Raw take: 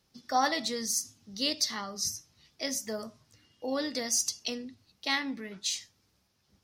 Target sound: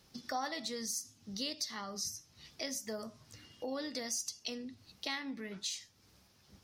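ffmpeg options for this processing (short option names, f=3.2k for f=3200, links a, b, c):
-af "acompressor=threshold=-51dB:ratio=2.5,volume=7dB"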